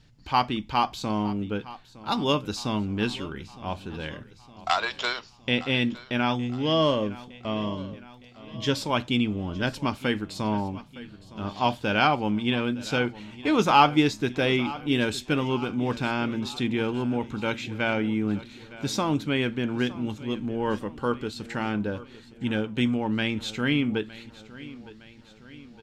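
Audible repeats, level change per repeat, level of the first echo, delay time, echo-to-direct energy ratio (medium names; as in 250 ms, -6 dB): 4, -5.5 dB, -18.0 dB, 912 ms, -16.5 dB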